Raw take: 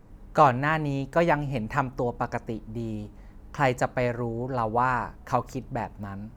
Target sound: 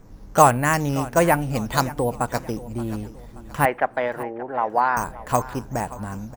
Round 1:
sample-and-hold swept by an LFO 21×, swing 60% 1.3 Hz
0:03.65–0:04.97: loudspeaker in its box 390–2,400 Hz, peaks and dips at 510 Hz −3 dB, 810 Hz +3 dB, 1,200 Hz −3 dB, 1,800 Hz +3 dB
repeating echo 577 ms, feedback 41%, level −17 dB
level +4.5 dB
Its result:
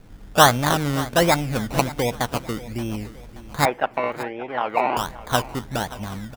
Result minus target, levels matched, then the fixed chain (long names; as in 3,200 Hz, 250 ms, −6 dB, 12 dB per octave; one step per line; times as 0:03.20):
sample-and-hold swept by an LFO: distortion +13 dB
sample-and-hold swept by an LFO 6×, swing 60% 1.3 Hz
0:03.65–0:04.97: loudspeaker in its box 390–2,400 Hz, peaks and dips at 510 Hz −3 dB, 810 Hz +3 dB, 1,200 Hz −3 dB, 1,800 Hz +3 dB
repeating echo 577 ms, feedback 41%, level −17 dB
level +4.5 dB